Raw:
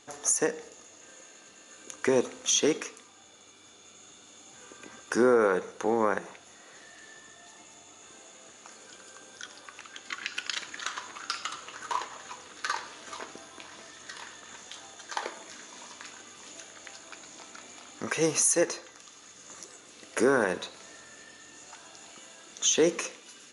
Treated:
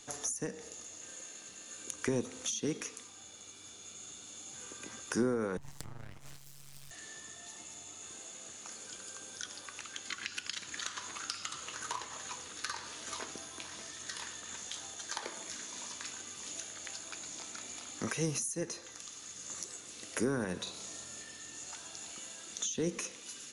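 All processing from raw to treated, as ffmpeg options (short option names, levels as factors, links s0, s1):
-filter_complex "[0:a]asettb=1/sr,asplit=3[s0][s1][s2];[s0]atrim=end=5.574[s3];[s1]atrim=start=5.57:end=6.91,asetpts=PTS-STARTPTS,afade=t=in:d=0.004:c=qsin,afade=t=out:st=1.336:d=0.004:c=qsin,acompressor=threshold=0.0112:ratio=20:attack=3.2:release=140:knee=1:detection=peak,aeval=exprs='abs(val(0))':c=same,tremolo=f=140:d=0.889[s4];[s2]atrim=start=6.906[s5];[s3][s4]acrossfade=d=0.004:c1=hsin:c2=qsin[s6];[s6][s5]acrossfade=d=0.004:c1=qsin:c2=hsin,asettb=1/sr,asplit=3[s7][s8][s9];[s7]atrim=end=20.634[s10];[s8]atrim=start=20.63:end=21.21,asetpts=PTS-STARTPTS,afade=t=in:d=0.004:c=qsin,afade=t=out:st=0.576:d=0.004:c=qsin,highpass=51,equalizer=f=1800:t=o:w=0.58:g=-7,asplit=2[s11][s12];[s12]adelay=37,volume=0.631[s13];[s11][s13]amix=inputs=2:normalize=0,atrim=end_sample=25578[s14];[s9]atrim=start=21.206[s15];[s10][s14]acrossfade=d=0.004:c1=hsin:c2=qsin[s16];[s16][s15]acrossfade=d=0.004:c1=qsin:c2=hsin,highshelf=f=3500:g=11.5,acrossover=split=250[s17][s18];[s18]acompressor=threshold=0.0282:ratio=10[s19];[s17][s19]amix=inputs=2:normalize=0,lowshelf=f=190:g=10.5,volume=0.631"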